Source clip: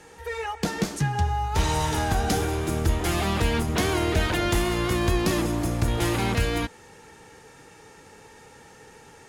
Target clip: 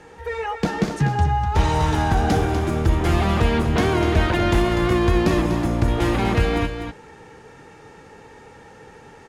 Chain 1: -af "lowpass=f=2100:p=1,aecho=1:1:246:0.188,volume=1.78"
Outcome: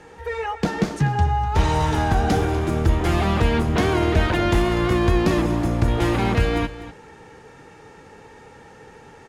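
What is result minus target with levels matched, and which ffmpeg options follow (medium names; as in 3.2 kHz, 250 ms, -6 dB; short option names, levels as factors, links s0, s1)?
echo-to-direct -6.5 dB
-af "lowpass=f=2100:p=1,aecho=1:1:246:0.398,volume=1.78"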